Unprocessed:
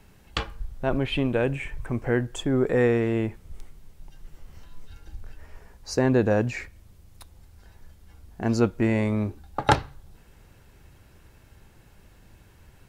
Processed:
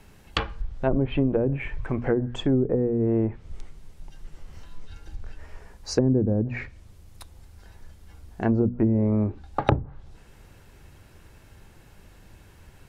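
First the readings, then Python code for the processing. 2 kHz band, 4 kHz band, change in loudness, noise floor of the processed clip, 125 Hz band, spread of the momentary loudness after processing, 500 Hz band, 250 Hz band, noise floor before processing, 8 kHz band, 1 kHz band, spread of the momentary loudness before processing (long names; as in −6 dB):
−5.5 dB, −2.0 dB, +0.5 dB, −52 dBFS, +2.0 dB, 20 LU, −1.0 dB, +1.5 dB, −55 dBFS, −2.5 dB, −3.5 dB, 11 LU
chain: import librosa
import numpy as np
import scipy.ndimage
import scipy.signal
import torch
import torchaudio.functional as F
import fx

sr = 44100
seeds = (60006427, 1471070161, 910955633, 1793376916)

y = fx.hum_notches(x, sr, base_hz=60, count=4)
y = fx.env_lowpass_down(y, sr, base_hz=300.0, full_db=-18.5)
y = y * librosa.db_to_amplitude(3.0)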